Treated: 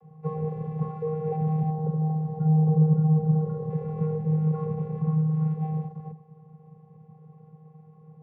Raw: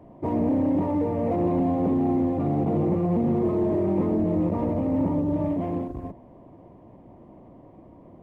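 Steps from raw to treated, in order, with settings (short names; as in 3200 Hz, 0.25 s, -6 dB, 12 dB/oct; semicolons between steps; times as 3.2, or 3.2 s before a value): 1.7–3.7 bell 2200 Hz -13.5 dB 0.89 oct; vocoder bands 16, square 156 Hz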